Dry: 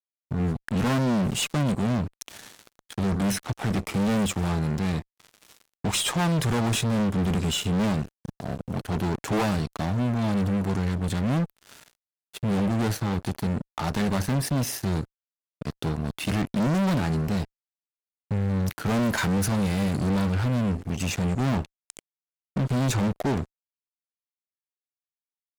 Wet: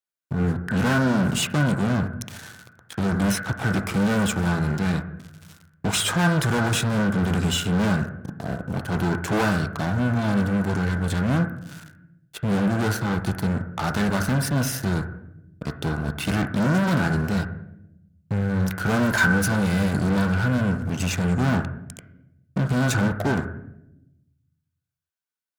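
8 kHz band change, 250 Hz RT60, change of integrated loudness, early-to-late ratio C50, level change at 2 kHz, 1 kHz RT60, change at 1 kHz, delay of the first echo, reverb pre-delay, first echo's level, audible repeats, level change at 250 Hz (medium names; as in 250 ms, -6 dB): +2.0 dB, 1.4 s, +3.0 dB, 6.0 dB, +9.0 dB, 0.65 s, +3.5 dB, no echo, 6 ms, no echo, no echo, +2.5 dB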